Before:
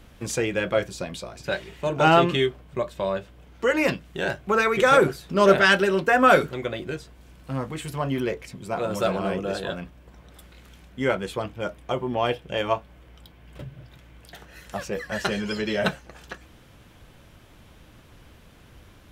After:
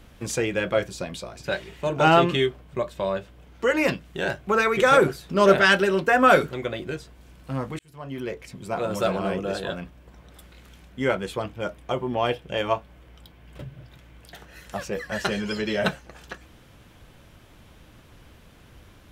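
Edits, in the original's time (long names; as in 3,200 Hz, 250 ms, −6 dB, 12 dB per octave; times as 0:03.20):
0:07.79–0:08.62: fade in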